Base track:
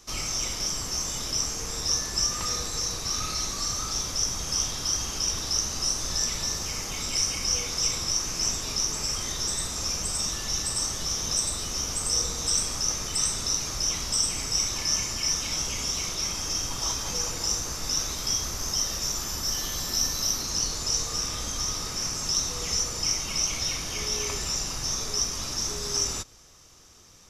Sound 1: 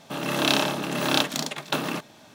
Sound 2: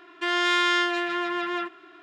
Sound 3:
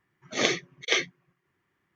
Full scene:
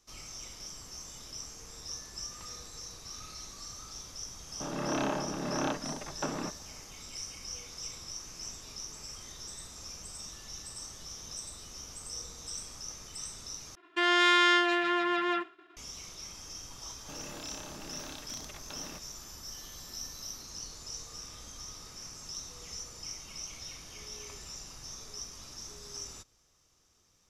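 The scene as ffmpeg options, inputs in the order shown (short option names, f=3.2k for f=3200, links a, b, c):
-filter_complex "[1:a]asplit=2[a][b];[0:a]volume=-15.5dB[c];[a]lowpass=1.5k[d];[2:a]agate=range=-33dB:threshold=-44dB:ratio=3:release=100:detection=peak[e];[b]acompressor=threshold=-26dB:ratio=6:attack=3.2:release=140:knee=1:detection=peak[f];[c]asplit=2[g][h];[g]atrim=end=13.754[i];[e]atrim=end=2.02,asetpts=PTS-STARTPTS,volume=-1dB[j];[h]atrim=start=15.766[k];[d]atrim=end=2.34,asetpts=PTS-STARTPTS,volume=-6.5dB,afade=t=in:d=0.004:c=hsin,afade=t=out:st=2.336:d=0.004:c=hsin,adelay=4500[l];[f]atrim=end=2.34,asetpts=PTS-STARTPTS,volume=-15.5dB,afade=t=in:d=0.004:c=hsin,afade=t=out:st=2.336:d=0.004:c=hsin,adelay=16980[m];[i][j]acrossfade=d=0.004:c1=hsin:c2=hsin[n];[n][k]acrossfade=d=0.004:c1=hsin:c2=hsin[o];[o][l][m]amix=inputs=3:normalize=0"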